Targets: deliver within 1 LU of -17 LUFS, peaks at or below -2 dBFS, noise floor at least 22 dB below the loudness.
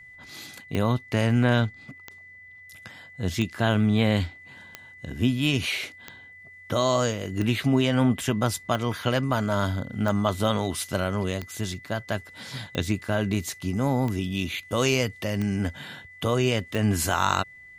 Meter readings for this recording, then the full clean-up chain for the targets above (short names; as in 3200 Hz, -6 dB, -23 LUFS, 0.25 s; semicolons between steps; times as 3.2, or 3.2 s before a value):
clicks 13; steady tone 2000 Hz; tone level -45 dBFS; loudness -25.5 LUFS; peak -7.5 dBFS; loudness target -17.0 LUFS
-> de-click; notch 2000 Hz, Q 30; gain +8.5 dB; limiter -2 dBFS